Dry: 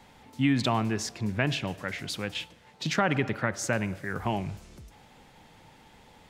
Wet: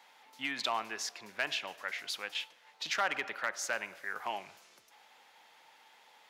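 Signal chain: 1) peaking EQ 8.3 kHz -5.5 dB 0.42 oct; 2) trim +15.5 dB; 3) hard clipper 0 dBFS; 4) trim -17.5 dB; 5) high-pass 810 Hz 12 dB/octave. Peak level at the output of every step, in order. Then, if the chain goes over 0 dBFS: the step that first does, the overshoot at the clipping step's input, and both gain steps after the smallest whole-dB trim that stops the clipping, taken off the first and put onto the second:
-10.0 dBFS, +5.5 dBFS, 0.0 dBFS, -17.5 dBFS, -17.5 dBFS; step 2, 5.5 dB; step 2 +9.5 dB, step 4 -11.5 dB

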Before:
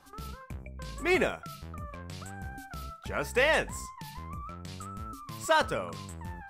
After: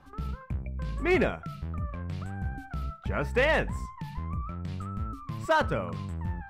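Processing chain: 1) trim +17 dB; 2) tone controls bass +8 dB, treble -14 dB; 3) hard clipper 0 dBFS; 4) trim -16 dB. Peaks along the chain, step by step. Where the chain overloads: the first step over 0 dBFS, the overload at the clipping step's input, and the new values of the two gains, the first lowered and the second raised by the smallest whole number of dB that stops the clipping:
+4.0 dBFS, +4.5 dBFS, 0.0 dBFS, -16.0 dBFS; step 1, 4.5 dB; step 1 +12 dB, step 4 -11 dB

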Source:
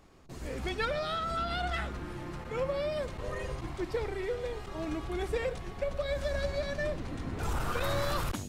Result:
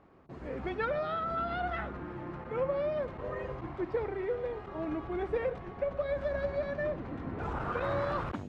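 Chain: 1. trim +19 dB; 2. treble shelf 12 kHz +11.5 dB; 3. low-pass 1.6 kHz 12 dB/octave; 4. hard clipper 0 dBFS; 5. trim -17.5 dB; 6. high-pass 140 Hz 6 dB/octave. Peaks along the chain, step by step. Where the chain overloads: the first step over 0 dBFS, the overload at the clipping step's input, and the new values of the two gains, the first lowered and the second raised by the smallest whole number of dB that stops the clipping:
-2.5 dBFS, -2.5 dBFS, -2.5 dBFS, -2.5 dBFS, -20.0 dBFS, -20.5 dBFS; nothing clips

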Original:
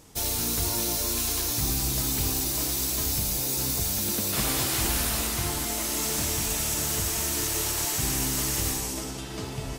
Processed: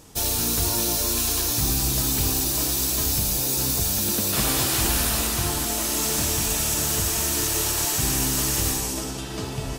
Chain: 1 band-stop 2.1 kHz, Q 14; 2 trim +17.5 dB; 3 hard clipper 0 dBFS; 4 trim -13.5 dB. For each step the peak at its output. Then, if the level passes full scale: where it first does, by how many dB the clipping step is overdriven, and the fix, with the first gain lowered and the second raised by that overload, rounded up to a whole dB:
-13.5 dBFS, +4.0 dBFS, 0.0 dBFS, -13.5 dBFS; step 2, 4.0 dB; step 2 +13.5 dB, step 4 -9.5 dB

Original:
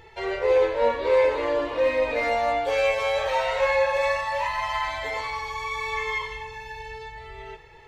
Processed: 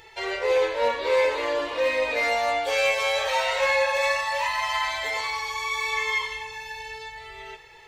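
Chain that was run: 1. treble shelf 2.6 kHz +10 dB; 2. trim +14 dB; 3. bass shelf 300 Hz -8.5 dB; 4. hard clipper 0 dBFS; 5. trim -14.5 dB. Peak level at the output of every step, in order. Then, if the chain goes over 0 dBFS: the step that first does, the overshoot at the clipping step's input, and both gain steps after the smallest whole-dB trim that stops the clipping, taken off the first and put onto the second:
-9.5 dBFS, +4.5 dBFS, +3.5 dBFS, 0.0 dBFS, -14.5 dBFS; step 2, 3.5 dB; step 2 +10 dB, step 5 -10.5 dB

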